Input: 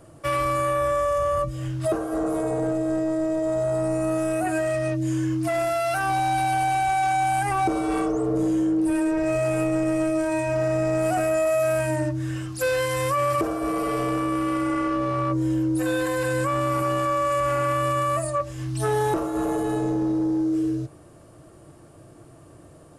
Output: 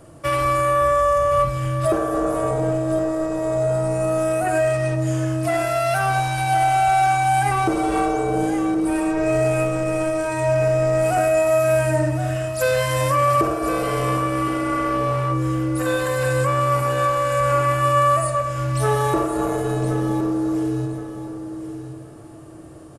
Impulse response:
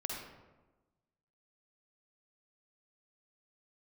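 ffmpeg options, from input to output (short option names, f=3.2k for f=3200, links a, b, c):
-filter_complex "[0:a]aecho=1:1:1069|2138|3207:0.316|0.0727|0.0167,asplit=2[a][b];[1:a]atrim=start_sample=2205,asetrate=52920,aresample=44100[c];[b][c]afir=irnorm=-1:irlink=0,volume=-2.5dB[d];[a][d]amix=inputs=2:normalize=0"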